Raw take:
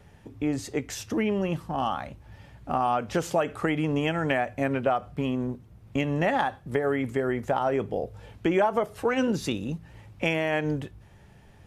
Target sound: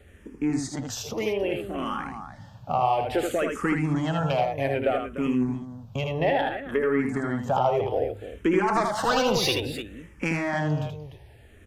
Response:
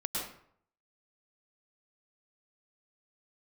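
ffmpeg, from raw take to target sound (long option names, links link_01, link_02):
-filter_complex "[0:a]asettb=1/sr,asplit=3[link_01][link_02][link_03];[link_01]atrim=end=6.124[link_04];[link_02]atrim=start=6.12:end=6.99,asetpts=PTS-STARTPTS,afade=type=in:duration=0.004:curve=qsin,afade=type=out:start_time=0.866:duration=0.004:curve=qsin,equalizer=frequency=8000:width=1.1:gain=-13[link_05];[link_03]atrim=start=6.986[link_06];[link_04][link_05]acrossfade=duration=0.004:curve1=hsin:curve2=qsin[link_07];[link_07][link_06]acrossfade=duration=0.004:curve1=qsin:curve2=hsin,asoftclip=type=tanh:threshold=-15dB,asplit=3[link_08][link_09][link_10];[link_08]afade=type=out:start_time=8.67:duration=0.02[link_11];[link_09]asplit=2[link_12][link_13];[link_13]highpass=frequency=720:poles=1,volume=21dB,asoftclip=type=tanh:threshold=-16dB[link_14];[link_12][link_14]amix=inputs=2:normalize=0,lowpass=frequency=6400:poles=1,volume=-6dB,afade=type=in:start_time=8.67:duration=0.02,afade=type=out:start_time=9.51:duration=0.02[link_15];[link_10]afade=type=in:start_time=9.51:duration=0.02[link_16];[link_11][link_15][link_16]amix=inputs=3:normalize=0,aecho=1:1:79|299:0.596|0.282,asplit=2[link_17][link_18];[link_18]afreqshift=-0.61[link_19];[link_17][link_19]amix=inputs=2:normalize=1,volume=3.5dB"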